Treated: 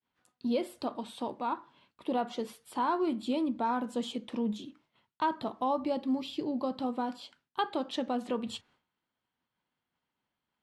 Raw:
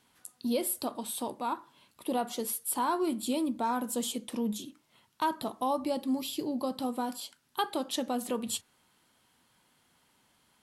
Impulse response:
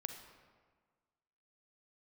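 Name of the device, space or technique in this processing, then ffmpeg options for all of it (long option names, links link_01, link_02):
hearing-loss simulation: -af "lowpass=3400,agate=range=-33dB:threshold=-59dB:ratio=3:detection=peak"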